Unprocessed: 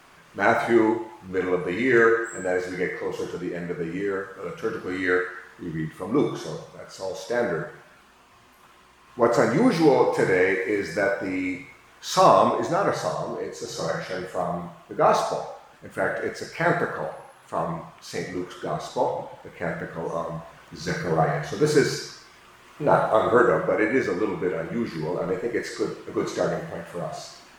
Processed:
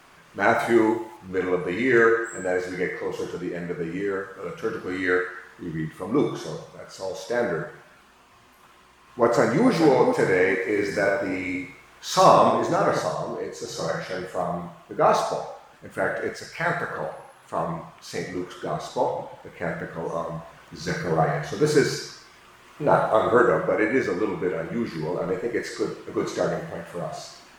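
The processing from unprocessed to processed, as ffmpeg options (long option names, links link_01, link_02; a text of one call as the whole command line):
ffmpeg -i in.wav -filter_complex "[0:a]asettb=1/sr,asplit=3[link_01][link_02][link_03];[link_01]atrim=end=0.594[link_04];[link_02]atrim=start=0.59:end=1.17,asetpts=PTS-STARTPTS,afade=type=in:duration=0.004:curve=qsin,afade=type=out:start_time=0.576:duration=0.004:curve=qsin,highshelf=frequency=8200:gain=10[link_05];[link_03]atrim=start=1.166[link_06];[link_04][link_05]acrossfade=duration=0.004:curve1=hsin:curve2=qsin[link_07];[link_07][link_06]acrossfade=duration=0.004:curve1=qsin:curve2=hsin,asplit=2[link_08][link_09];[link_09]afade=type=in:start_time=9.23:duration=0.01,afade=type=out:start_time=9.69:duration=0.01,aecho=0:1:430|860|1290|1720:0.354813|0.141925|0.0567701|0.0227081[link_10];[link_08][link_10]amix=inputs=2:normalize=0,asplit=3[link_11][link_12][link_13];[link_11]afade=type=out:start_time=10.75:duration=0.02[link_14];[link_12]aecho=1:1:88:0.596,afade=type=in:start_time=10.75:duration=0.02,afade=type=out:start_time=13.02:duration=0.02[link_15];[link_13]afade=type=in:start_time=13.02:duration=0.02[link_16];[link_14][link_15][link_16]amix=inputs=3:normalize=0,asettb=1/sr,asplit=3[link_17][link_18][link_19];[link_17]atrim=end=16.364[link_20];[link_18]atrim=start=16.36:end=16.91,asetpts=PTS-STARTPTS,afade=type=in:duration=0.004:curve=qsin,afade=type=out:start_time=0.546:duration=0.004:curve=qsin,equalizer=frequency=320:width_type=o:width=1.6:gain=-10[link_21];[link_19]atrim=start=16.906[link_22];[link_20][link_21]acrossfade=duration=0.004:curve1=hsin:curve2=qsin[link_23];[link_23][link_22]acrossfade=duration=0.004:curve1=qsin:curve2=hsin" out.wav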